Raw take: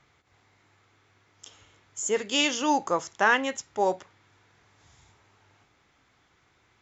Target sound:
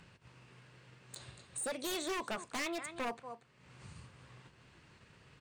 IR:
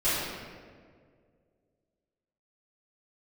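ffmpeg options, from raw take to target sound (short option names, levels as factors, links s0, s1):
-af "agate=range=0.0224:threshold=0.00251:ratio=3:detection=peak,bass=f=250:g=7,treble=f=4000:g=-4,aecho=1:1:295:0.112,acompressor=mode=upward:threshold=0.00794:ratio=2.5,asetrate=55566,aresample=44100,acompressor=threshold=0.0112:ratio=2,aeval=exprs='0.0266*(abs(mod(val(0)/0.0266+3,4)-2)-1)':c=same"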